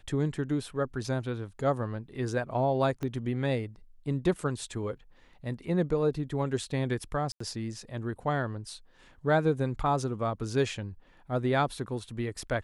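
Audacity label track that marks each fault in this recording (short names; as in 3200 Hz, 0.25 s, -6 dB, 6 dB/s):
3.030000	3.030000	pop -22 dBFS
7.320000	7.400000	gap 84 ms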